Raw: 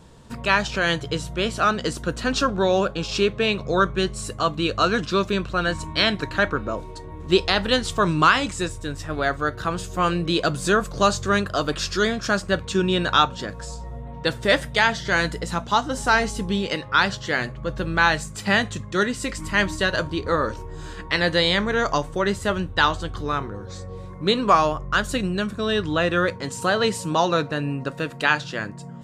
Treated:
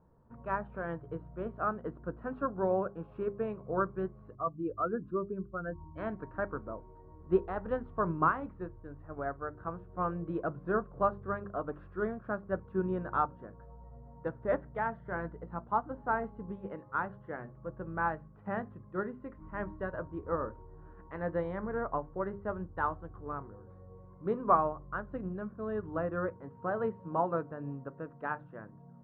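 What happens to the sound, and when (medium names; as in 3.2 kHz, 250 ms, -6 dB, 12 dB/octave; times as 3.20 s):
4.35–5.98 s: spectral contrast enhancement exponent 1.9
whole clip: inverse Chebyshev low-pass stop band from 7.1 kHz, stop band 80 dB; hum notches 50/100/150/200/250/300/350/400 Hz; upward expansion 1.5:1, over -31 dBFS; trim -7 dB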